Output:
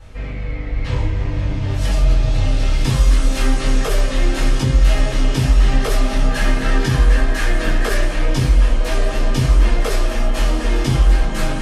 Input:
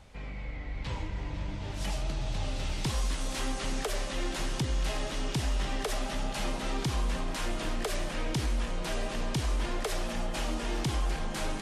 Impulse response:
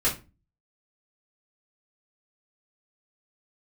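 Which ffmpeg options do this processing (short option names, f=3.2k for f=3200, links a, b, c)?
-filter_complex "[0:a]asettb=1/sr,asplit=3[a][b][c];[a]atrim=end=6.284[d];[b]atrim=start=6.28:end=8.05,asetpts=PTS-STARTPTS,afade=t=in:d=0.004:c=qsin,afade=t=out:st=1.766:d=0.004:c=qsin,equalizer=f=1.7k:t=o:w=0.28:g=9.5[e];[c]atrim=start=8.046[f];[d][e]acrossfade=d=0.004:c1=hsin:c2=qsin[g];[g][f]acrossfade=d=0.004:c1=qsin:c2=hsin[h];[1:a]atrim=start_sample=2205[i];[h][i]afir=irnorm=-1:irlink=0"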